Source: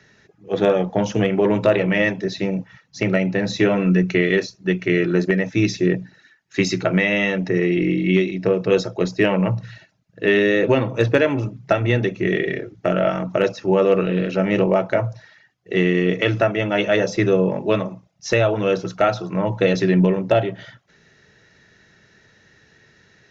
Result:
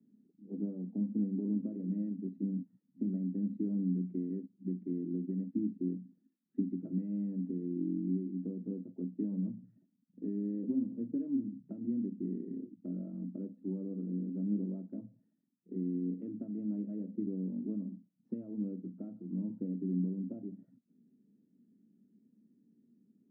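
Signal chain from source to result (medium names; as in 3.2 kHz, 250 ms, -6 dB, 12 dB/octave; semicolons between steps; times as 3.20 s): compression 2:1, threshold -27 dBFS, peak gain reduction 9 dB; Butterworth band-pass 240 Hz, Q 3.4; trim +1.5 dB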